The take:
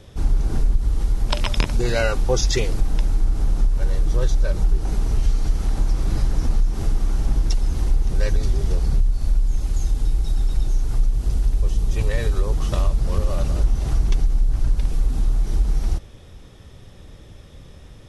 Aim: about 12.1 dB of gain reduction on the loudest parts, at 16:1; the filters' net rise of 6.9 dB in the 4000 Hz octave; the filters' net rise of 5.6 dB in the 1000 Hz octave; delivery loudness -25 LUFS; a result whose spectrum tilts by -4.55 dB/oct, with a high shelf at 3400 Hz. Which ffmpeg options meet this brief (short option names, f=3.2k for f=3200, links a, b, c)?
-af "equalizer=f=1k:t=o:g=6.5,highshelf=f=3.4k:g=4,equalizer=f=4k:t=o:g=5.5,acompressor=threshold=-24dB:ratio=16,volume=8dB"